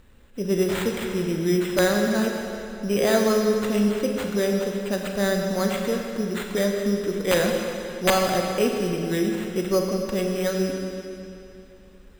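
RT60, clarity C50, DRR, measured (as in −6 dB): 2.8 s, 2.5 dB, 1.5 dB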